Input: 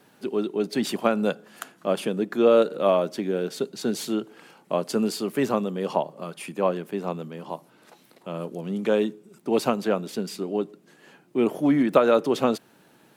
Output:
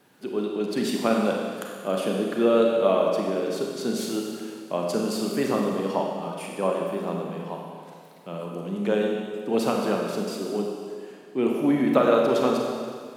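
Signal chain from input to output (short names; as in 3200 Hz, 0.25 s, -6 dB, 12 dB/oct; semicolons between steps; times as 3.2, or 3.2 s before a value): Schroeder reverb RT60 2 s, combs from 31 ms, DRR -0.5 dB; gain -3 dB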